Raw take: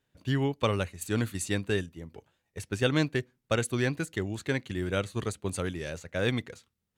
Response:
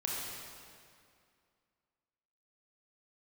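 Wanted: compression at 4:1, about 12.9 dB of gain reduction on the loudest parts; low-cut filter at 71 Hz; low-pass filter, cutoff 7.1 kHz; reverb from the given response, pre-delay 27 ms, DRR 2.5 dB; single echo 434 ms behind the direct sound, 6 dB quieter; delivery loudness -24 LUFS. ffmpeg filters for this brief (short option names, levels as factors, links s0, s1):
-filter_complex "[0:a]highpass=71,lowpass=7100,acompressor=threshold=0.0141:ratio=4,aecho=1:1:434:0.501,asplit=2[s0][s1];[1:a]atrim=start_sample=2205,adelay=27[s2];[s1][s2]afir=irnorm=-1:irlink=0,volume=0.447[s3];[s0][s3]amix=inputs=2:normalize=0,volume=5.62"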